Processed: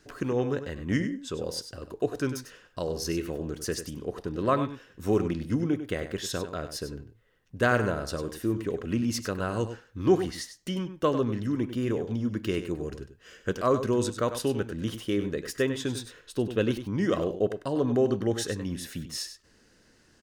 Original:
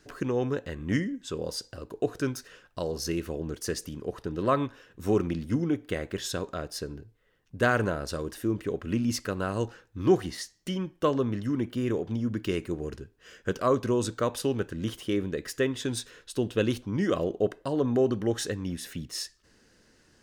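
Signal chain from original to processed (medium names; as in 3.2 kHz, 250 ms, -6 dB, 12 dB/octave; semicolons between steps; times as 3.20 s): 15.88–16.91 s: peaking EQ 7.6 kHz -5 dB 1.9 oct; delay 98 ms -10.5 dB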